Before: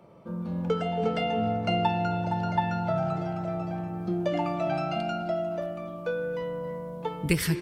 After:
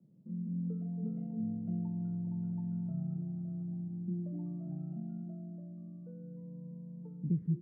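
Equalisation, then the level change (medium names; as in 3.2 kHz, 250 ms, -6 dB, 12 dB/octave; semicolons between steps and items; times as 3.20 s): Butterworth band-pass 180 Hz, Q 1.5; -4.5 dB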